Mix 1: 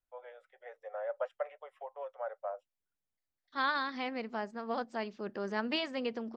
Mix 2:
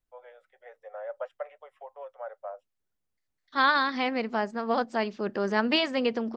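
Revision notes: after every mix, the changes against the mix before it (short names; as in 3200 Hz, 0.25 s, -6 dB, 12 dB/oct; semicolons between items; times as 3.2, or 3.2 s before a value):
second voice +9.0 dB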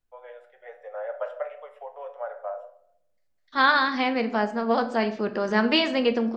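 reverb: on, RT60 0.70 s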